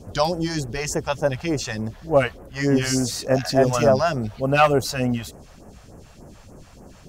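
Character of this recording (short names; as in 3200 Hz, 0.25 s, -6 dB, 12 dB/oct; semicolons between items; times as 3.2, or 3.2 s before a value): phasing stages 2, 3.4 Hz, lowest notch 270–3700 Hz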